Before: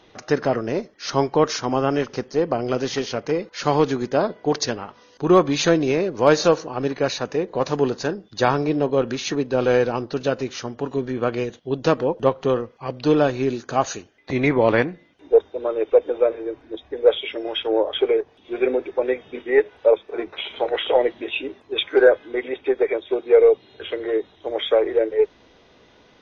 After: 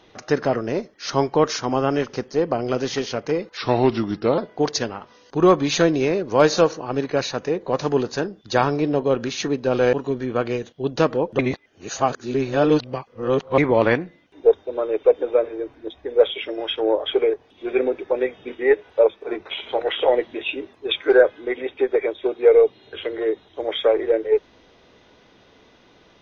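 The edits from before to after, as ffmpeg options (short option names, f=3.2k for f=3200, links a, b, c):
-filter_complex "[0:a]asplit=6[a][b][c][d][e][f];[a]atrim=end=3.574[g];[b]atrim=start=3.57:end=4.25,asetpts=PTS-STARTPTS,asetrate=37044,aresample=44100[h];[c]atrim=start=4.246:end=9.802[i];[d]atrim=start=10.798:end=12.262[j];[e]atrim=start=12.258:end=14.452,asetpts=PTS-STARTPTS,areverse[k];[f]atrim=start=14.448[l];[g][h]acrossfade=d=0.004:c1=hsin:c2=hsin[m];[m][i]acrossfade=d=0.004:c1=hsin:c2=hsin[n];[n][j]acrossfade=d=0.004:c1=hsin:c2=hsin[o];[o][k]acrossfade=d=0.004:c1=hsin:c2=hsin[p];[p][l]acrossfade=d=0.004:c1=hsin:c2=hsin"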